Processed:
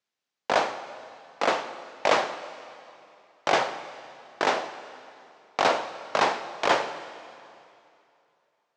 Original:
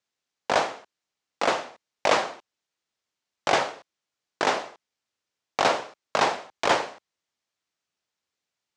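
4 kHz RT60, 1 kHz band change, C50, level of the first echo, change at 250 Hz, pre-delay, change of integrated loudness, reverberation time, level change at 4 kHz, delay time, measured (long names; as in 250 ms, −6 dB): 2.5 s, 0.0 dB, 12.0 dB, no echo audible, −0.5 dB, 13 ms, −1.0 dB, 2.7 s, −1.0 dB, no echo audible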